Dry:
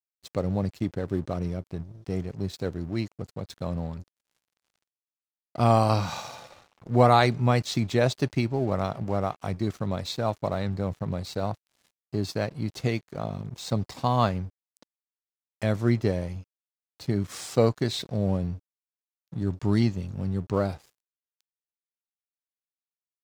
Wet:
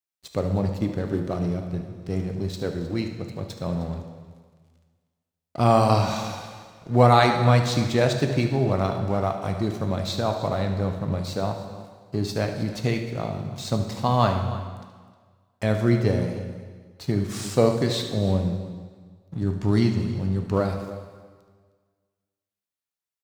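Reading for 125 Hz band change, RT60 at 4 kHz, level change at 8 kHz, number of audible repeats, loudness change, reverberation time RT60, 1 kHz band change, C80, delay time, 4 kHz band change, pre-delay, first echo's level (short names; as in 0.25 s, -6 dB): +3.5 dB, 1.4 s, +3.5 dB, 2, +3.0 dB, 1.5 s, +3.0 dB, 8.0 dB, 74 ms, +3.5 dB, 5 ms, -12.5 dB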